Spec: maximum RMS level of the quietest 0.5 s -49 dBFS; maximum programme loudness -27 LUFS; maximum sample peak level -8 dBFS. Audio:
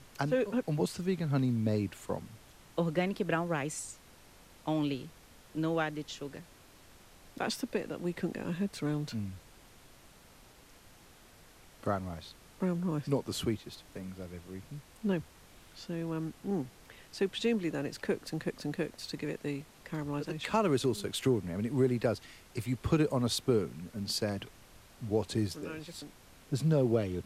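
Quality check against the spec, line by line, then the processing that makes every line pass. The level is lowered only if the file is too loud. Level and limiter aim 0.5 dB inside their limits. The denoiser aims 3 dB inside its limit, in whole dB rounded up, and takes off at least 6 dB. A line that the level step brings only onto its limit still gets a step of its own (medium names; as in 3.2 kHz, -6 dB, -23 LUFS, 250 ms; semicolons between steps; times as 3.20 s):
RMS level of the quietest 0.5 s -57 dBFS: pass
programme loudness -34.0 LUFS: pass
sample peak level -16.0 dBFS: pass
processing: none needed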